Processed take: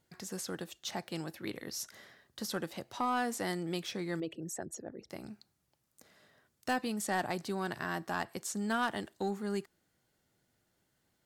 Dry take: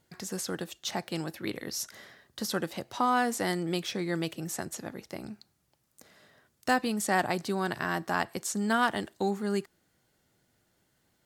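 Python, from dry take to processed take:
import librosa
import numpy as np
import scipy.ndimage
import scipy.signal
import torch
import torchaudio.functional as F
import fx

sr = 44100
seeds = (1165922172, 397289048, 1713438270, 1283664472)

y = fx.envelope_sharpen(x, sr, power=2.0, at=(4.2, 5.1))
y = 10.0 ** (-16.5 / 20.0) * np.tanh(y / 10.0 ** (-16.5 / 20.0))
y = y * 10.0 ** (-5.0 / 20.0)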